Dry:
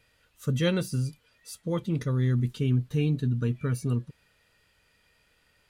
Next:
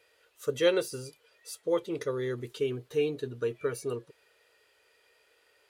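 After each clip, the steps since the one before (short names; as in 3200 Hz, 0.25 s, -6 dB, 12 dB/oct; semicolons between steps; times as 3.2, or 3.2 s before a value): HPF 100 Hz 6 dB/oct; resonant low shelf 290 Hz -12 dB, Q 3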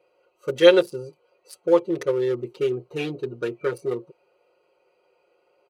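Wiener smoothing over 25 samples; HPF 230 Hz 6 dB/oct; comb 5.6 ms, depth 83%; gain +7.5 dB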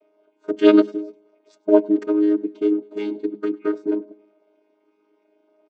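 chord vocoder bare fifth, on G#3; feedback echo 0.101 s, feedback 50%, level -24 dB; gain +3 dB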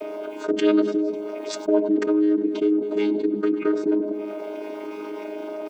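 fast leveller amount 70%; gain -7.5 dB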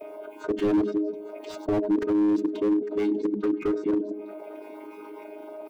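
per-bin expansion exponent 1.5; thinning echo 0.852 s, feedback 36%, high-pass 840 Hz, level -18 dB; slew limiter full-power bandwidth 37 Hz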